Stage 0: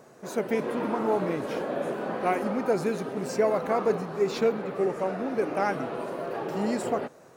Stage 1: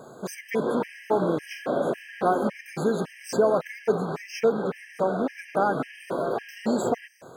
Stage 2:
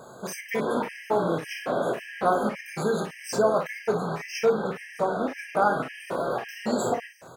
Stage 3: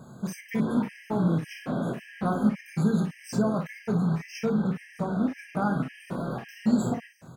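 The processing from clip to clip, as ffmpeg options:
ffmpeg -i in.wav -filter_complex "[0:a]asplit=2[link_01][link_02];[link_02]acompressor=threshold=-31dB:ratio=6,volume=3dB[link_03];[link_01][link_03]amix=inputs=2:normalize=0,afftfilt=real='re*gt(sin(2*PI*1.8*pts/sr)*(1-2*mod(floor(b*sr/1024/1600),2)),0)':imag='im*gt(sin(2*PI*1.8*pts/sr)*(1-2*mod(floor(b*sr/1024/1600),2)),0)':win_size=1024:overlap=0.75" out.wav
ffmpeg -i in.wav -filter_complex "[0:a]equalizer=frequency=300:width_type=o:width=1.8:gain=-6.5,asplit=2[link_01][link_02];[link_02]aecho=0:1:24|55:0.398|0.376[link_03];[link_01][link_03]amix=inputs=2:normalize=0,volume=2dB" out.wav
ffmpeg -i in.wav -af "lowshelf=frequency=310:width_type=q:width=1.5:gain=12.5,volume=-6.5dB" out.wav

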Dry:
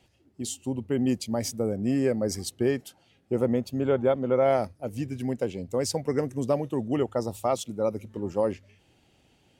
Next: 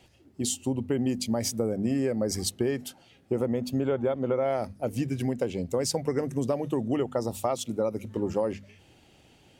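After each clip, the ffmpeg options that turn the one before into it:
ffmpeg -i in.wav -filter_complex "[0:a]bandreject=frequency=50:width_type=h:width=6,bandreject=frequency=100:width_type=h:width=6,bandreject=frequency=150:width_type=h:width=6,bandreject=frequency=200:width_type=h:width=6,bandreject=frequency=250:width_type=h:width=6,asplit=2[link_01][link_02];[link_02]alimiter=limit=-22dB:level=0:latency=1:release=243,volume=-1dB[link_03];[link_01][link_03]amix=inputs=2:normalize=0,acompressor=threshold=-23dB:ratio=6" out.wav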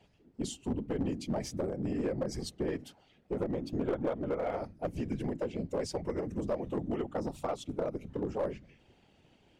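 ffmpeg -i in.wav -af "afftfilt=real='hypot(re,im)*cos(2*PI*random(0))':imag='hypot(re,im)*sin(2*PI*random(1))':win_size=512:overlap=0.75,aemphasis=mode=reproduction:type=50fm,aeval=exprs='clip(val(0),-1,0.0398)':channel_layout=same" out.wav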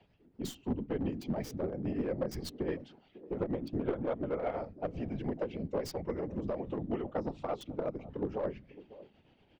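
ffmpeg -i in.wav -filter_complex "[0:a]tremolo=f=8.5:d=0.49,acrossover=split=160|1000|4800[link_01][link_02][link_03][link_04];[link_02]aecho=1:1:551:0.158[link_05];[link_04]acrusher=bits=5:dc=4:mix=0:aa=0.000001[link_06];[link_01][link_05][link_03][link_06]amix=inputs=4:normalize=0,volume=1dB" out.wav

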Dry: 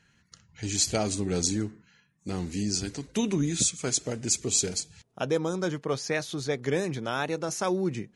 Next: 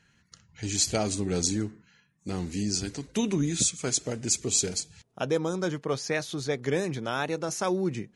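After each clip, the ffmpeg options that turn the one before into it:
ffmpeg -i in.wav -af anull out.wav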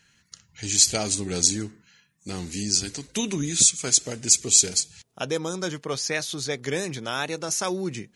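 ffmpeg -i in.wav -af "highshelf=frequency=2200:gain=11,volume=-1.5dB" out.wav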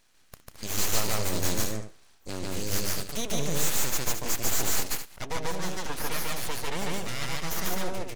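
ffmpeg -i in.wav -filter_complex "[0:a]aeval=exprs='(tanh(11.2*val(0)+0.5)-tanh(0.5))/11.2':channel_layout=same,aeval=exprs='abs(val(0))':channel_layout=same,asplit=2[link_01][link_02];[link_02]aecho=0:1:145.8|218.7:1|0.355[link_03];[link_01][link_03]amix=inputs=2:normalize=0" out.wav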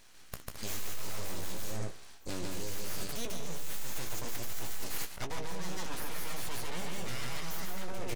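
ffmpeg -i in.wav -filter_complex "[0:a]asoftclip=type=tanh:threshold=-25.5dB,areverse,acompressor=threshold=-36dB:ratio=10,areverse,asplit=2[link_01][link_02];[link_02]adelay=17,volume=-9dB[link_03];[link_01][link_03]amix=inputs=2:normalize=0,volume=6dB" out.wav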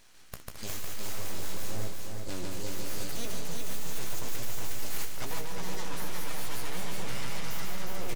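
ffmpeg -i in.wav -af "aecho=1:1:360|720|1080|1440|1800|2160:0.631|0.303|0.145|0.0698|0.0335|0.0161" out.wav

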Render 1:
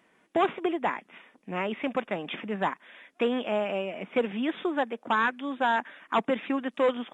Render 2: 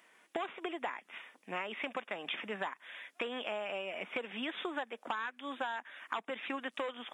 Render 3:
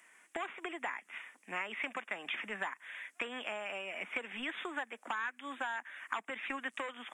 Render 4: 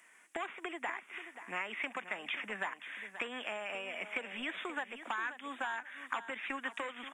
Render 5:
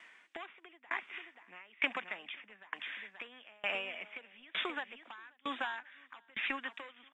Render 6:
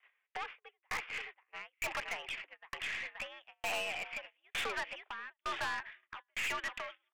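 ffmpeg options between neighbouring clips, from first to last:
ffmpeg -i in.wav -af "highpass=frequency=1000:poles=1,highshelf=frequency=6000:gain=4.5,acompressor=threshold=-37dB:ratio=12,volume=3dB" out.wav
ffmpeg -i in.wav -filter_complex "[0:a]equalizer=frequency=125:width_type=o:width=1:gain=-6,equalizer=frequency=500:width_type=o:width=1:gain=-5,equalizer=frequency=2000:width_type=o:width=1:gain=6,equalizer=frequency=4000:width_type=o:width=1:gain=-8,equalizer=frequency=8000:width_type=o:width=1:gain=11,acrossover=split=320|1100|1300[link_01][link_02][link_03][link_04];[link_01]aeval=exprs='clip(val(0),-1,0.00398)':channel_layout=same[link_05];[link_05][link_02][link_03][link_04]amix=inputs=4:normalize=0,volume=-1dB" out.wav
ffmpeg -i in.wav -af "aecho=1:1:531|1062|1593:0.251|0.0553|0.0122" out.wav
ffmpeg -i in.wav -af "lowpass=frequency=3800:width_type=q:width=2.1,aeval=exprs='val(0)*pow(10,-30*if(lt(mod(1.1*n/s,1),2*abs(1.1)/1000),1-mod(1.1*n/s,1)/(2*abs(1.1)/1000),(mod(1.1*n/s,1)-2*abs(1.1)/1000)/(1-2*abs(1.1)/1000))/20)':channel_layout=same,volume=5.5dB" out.wav
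ffmpeg -i in.wav -af "highpass=frequency=350:width_type=q:width=0.5412,highpass=frequency=350:width_type=q:width=1.307,lowpass=frequency=3200:width_type=q:width=0.5176,lowpass=frequency=3200:width_type=q:width=0.7071,lowpass=frequency=3200:width_type=q:width=1.932,afreqshift=86,agate=range=-26dB:threshold=-54dB:ratio=16:detection=peak,aeval=exprs='(tanh(112*val(0)+0.3)-tanh(0.3))/112':channel_layout=same,volume=8dB" out.wav

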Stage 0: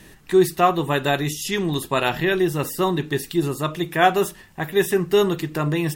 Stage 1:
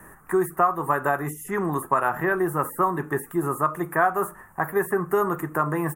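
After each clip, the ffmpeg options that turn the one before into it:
ffmpeg -i in.wav -filter_complex "[0:a]firequalizer=gain_entry='entry(300,0);entry(1200,15);entry(2800,-17);entry(4200,-29);entry(6300,-9);entry(9400,6)':delay=0.05:min_phase=1,acrossover=split=110|2200[link_01][link_02][link_03];[link_01]acompressor=threshold=-50dB:ratio=4[link_04];[link_02]acompressor=threshold=-16dB:ratio=4[link_05];[link_03]acompressor=threshold=-35dB:ratio=4[link_06];[link_04][link_05][link_06]amix=inputs=3:normalize=0,volume=-3dB" out.wav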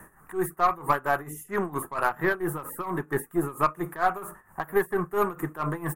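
ffmpeg -i in.wav -af "aeval=exprs='0.422*(cos(1*acos(clip(val(0)/0.422,-1,1)))-cos(1*PI/2))+0.0188*(cos(4*acos(clip(val(0)/0.422,-1,1)))-cos(4*PI/2))+0.0106*(cos(8*acos(clip(val(0)/0.422,-1,1)))-cos(8*PI/2))':channel_layout=same,tremolo=f=4.4:d=0.85" out.wav

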